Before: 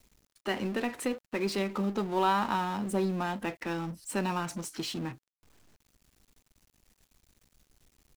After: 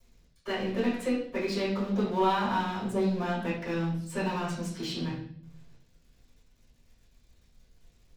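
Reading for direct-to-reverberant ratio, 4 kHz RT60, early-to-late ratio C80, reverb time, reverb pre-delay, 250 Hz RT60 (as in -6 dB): -8.5 dB, 0.60 s, 8.5 dB, 0.60 s, 5 ms, 1.0 s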